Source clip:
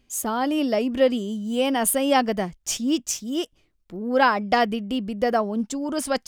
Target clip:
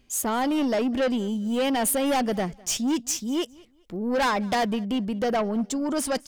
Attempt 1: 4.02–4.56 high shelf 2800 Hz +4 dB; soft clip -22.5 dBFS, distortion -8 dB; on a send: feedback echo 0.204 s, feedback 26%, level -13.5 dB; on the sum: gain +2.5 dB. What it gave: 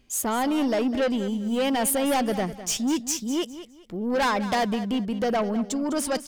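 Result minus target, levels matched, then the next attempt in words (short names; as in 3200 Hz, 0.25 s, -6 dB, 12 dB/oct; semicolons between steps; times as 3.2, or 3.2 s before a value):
echo-to-direct +11 dB
4.02–4.56 high shelf 2800 Hz +4 dB; soft clip -22.5 dBFS, distortion -8 dB; on a send: feedback echo 0.204 s, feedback 26%, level -24.5 dB; on the sum: gain +2.5 dB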